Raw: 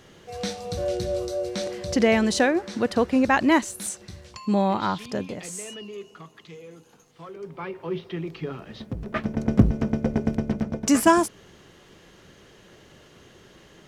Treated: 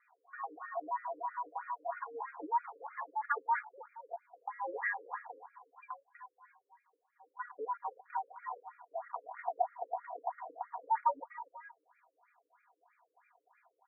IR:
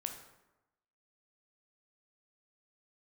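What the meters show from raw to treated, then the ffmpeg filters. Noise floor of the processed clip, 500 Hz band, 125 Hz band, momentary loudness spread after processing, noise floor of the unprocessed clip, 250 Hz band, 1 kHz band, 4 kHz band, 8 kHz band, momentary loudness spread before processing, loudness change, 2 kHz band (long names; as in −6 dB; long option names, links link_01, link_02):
−82 dBFS, −19.0 dB, below −40 dB, 17 LU, −53 dBFS, −35.5 dB, −6.5 dB, below −40 dB, below −40 dB, 18 LU, −15.0 dB, −12.5 dB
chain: -filter_complex "[0:a]afftfilt=real='real(if(lt(b,1008),b+24*(1-2*mod(floor(b/24),2)),b),0)':imag='imag(if(lt(b,1008),b+24*(1-2*mod(floor(b/24),2)),b),0)':win_size=2048:overlap=0.75,afwtdn=0.0316,highpass=frequency=180:width_type=q:width=0.5412,highpass=frequency=180:width_type=q:width=1.307,lowpass=frequency=2900:width_type=q:width=0.5176,lowpass=frequency=2900:width_type=q:width=0.7071,lowpass=frequency=2900:width_type=q:width=1.932,afreqshift=91,tiltshelf=frequency=1500:gain=-4.5,acompressor=threshold=-39dB:ratio=2.5,aecho=1:1:4.2:0.83,asplit=2[link_01][link_02];[link_02]aecho=0:1:243|478:0.2|0.112[link_03];[link_01][link_03]amix=inputs=2:normalize=0,afftfilt=real='re*between(b*sr/1024,390*pow(1800/390,0.5+0.5*sin(2*PI*3.1*pts/sr))/1.41,390*pow(1800/390,0.5+0.5*sin(2*PI*3.1*pts/sr))*1.41)':imag='im*between(b*sr/1024,390*pow(1800/390,0.5+0.5*sin(2*PI*3.1*pts/sr))/1.41,390*pow(1800/390,0.5+0.5*sin(2*PI*3.1*pts/sr))*1.41)':win_size=1024:overlap=0.75,volume=2.5dB"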